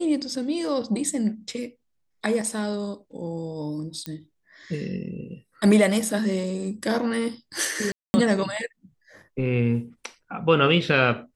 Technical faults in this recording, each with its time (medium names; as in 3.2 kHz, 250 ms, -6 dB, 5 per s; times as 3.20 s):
4.06 s: pop -16 dBFS
7.92–8.14 s: dropout 220 ms